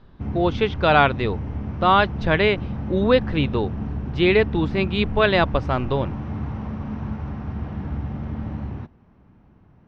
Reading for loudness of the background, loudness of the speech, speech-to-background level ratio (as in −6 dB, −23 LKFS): −30.0 LKFS, −21.0 LKFS, 9.0 dB